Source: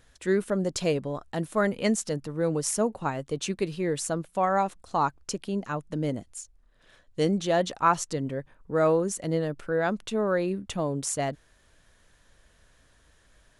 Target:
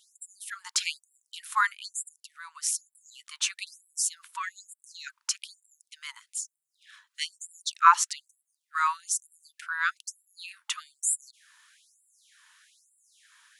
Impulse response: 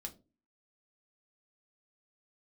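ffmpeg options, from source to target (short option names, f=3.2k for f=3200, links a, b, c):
-filter_complex "[0:a]asplit=3[a][b][c];[a]afade=t=out:st=1.72:d=0.02[d];[b]acompressor=threshold=-33dB:ratio=2.5,afade=t=in:st=1.72:d=0.02,afade=t=out:st=2.86:d=0.02[e];[c]afade=t=in:st=2.86:d=0.02[f];[d][e][f]amix=inputs=3:normalize=0,afftfilt=real='re*gte(b*sr/1024,850*pow(7300/850,0.5+0.5*sin(2*PI*1.1*pts/sr)))':imag='im*gte(b*sr/1024,850*pow(7300/850,0.5+0.5*sin(2*PI*1.1*pts/sr)))':win_size=1024:overlap=0.75,volume=6.5dB"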